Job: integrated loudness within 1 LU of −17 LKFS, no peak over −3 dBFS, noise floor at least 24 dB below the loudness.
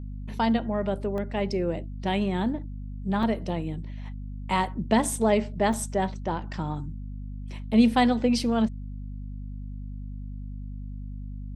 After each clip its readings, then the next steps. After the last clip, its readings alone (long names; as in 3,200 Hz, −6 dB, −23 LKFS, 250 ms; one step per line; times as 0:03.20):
number of dropouts 3; longest dropout 1.2 ms; mains hum 50 Hz; hum harmonics up to 250 Hz; level of the hum −33 dBFS; integrated loudness −26.5 LKFS; sample peak −8.0 dBFS; target loudness −17.0 LKFS
→ repair the gap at 0:01.18/0:03.23/0:05.73, 1.2 ms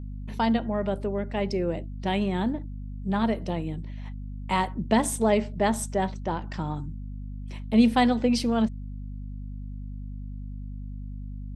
number of dropouts 0; mains hum 50 Hz; hum harmonics up to 250 Hz; level of the hum −33 dBFS
→ mains-hum notches 50/100/150/200/250 Hz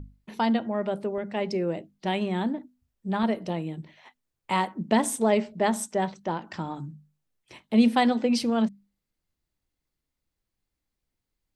mains hum none found; integrated loudness −27.0 LKFS; sample peak −8.0 dBFS; target loudness −17.0 LKFS
→ level +10 dB
brickwall limiter −3 dBFS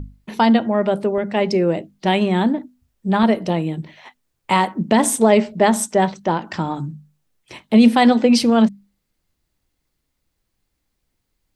integrated loudness −17.5 LKFS; sample peak −3.0 dBFS; background noise floor −74 dBFS